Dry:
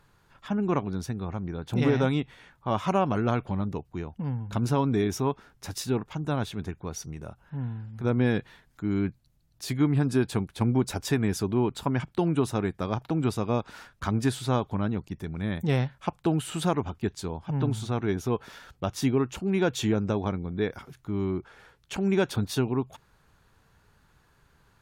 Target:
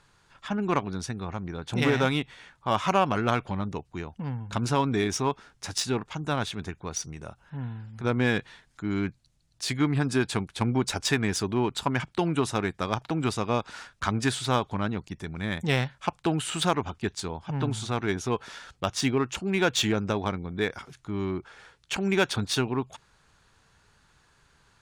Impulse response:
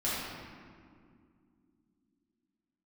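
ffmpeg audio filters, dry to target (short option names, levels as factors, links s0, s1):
-filter_complex "[0:a]lowpass=f=9400:w=0.5412,lowpass=f=9400:w=1.3066,tiltshelf=f=1100:g=-7,asplit=2[s0][s1];[s1]adynamicsmooth=sensitivity=5:basefreq=1300,volume=0.708[s2];[s0][s2]amix=inputs=2:normalize=0"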